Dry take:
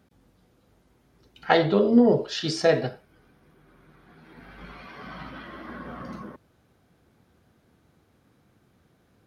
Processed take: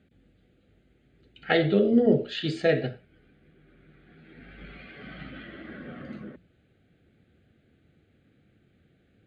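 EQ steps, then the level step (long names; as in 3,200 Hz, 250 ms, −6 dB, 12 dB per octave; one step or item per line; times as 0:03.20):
low-pass filter 7,100 Hz 24 dB per octave
mains-hum notches 60/120/180/240 Hz
phaser with its sweep stopped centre 2,400 Hz, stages 4
+1.0 dB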